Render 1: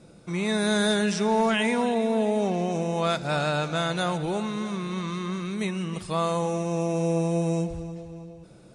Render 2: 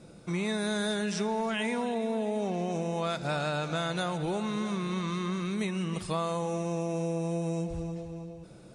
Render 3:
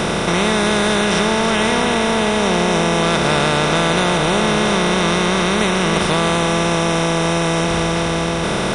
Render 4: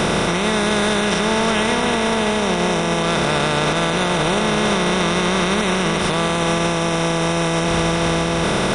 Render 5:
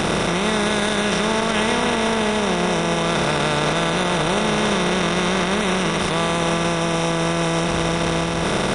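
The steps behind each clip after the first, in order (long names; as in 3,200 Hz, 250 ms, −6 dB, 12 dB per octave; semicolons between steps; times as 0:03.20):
downward compressor, threshold −27 dBFS, peak gain reduction 9 dB
compressor on every frequency bin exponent 0.2; level +7.5 dB
brickwall limiter −9.5 dBFS, peak gain reduction 7 dB; level +1 dB
saturating transformer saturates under 360 Hz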